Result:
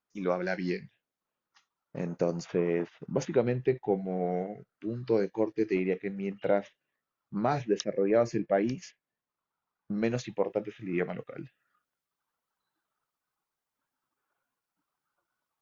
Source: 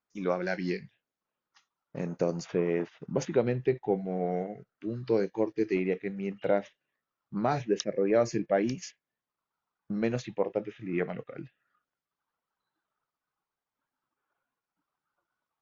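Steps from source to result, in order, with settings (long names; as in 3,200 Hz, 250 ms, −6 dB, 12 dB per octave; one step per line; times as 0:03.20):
high-shelf EQ 5,200 Hz −2.5 dB, from 0:07.98 −10 dB, from 0:09.98 +4.5 dB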